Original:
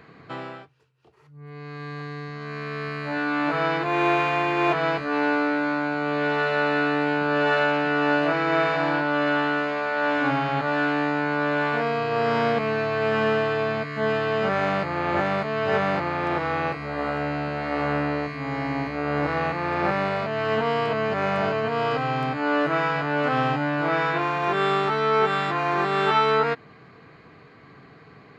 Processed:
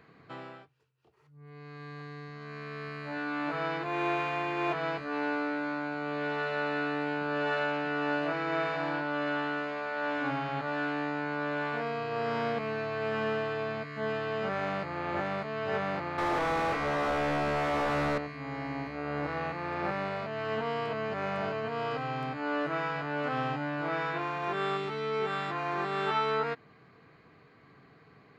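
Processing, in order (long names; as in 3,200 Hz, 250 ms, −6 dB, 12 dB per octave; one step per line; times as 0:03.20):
0:16.18–0:18.18: mid-hump overdrive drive 32 dB, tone 1,100 Hz, clips at −11.5 dBFS
0:24.77–0:25.26: gain on a spectral selection 540–1,900 Hz −6 dB
level −9 dB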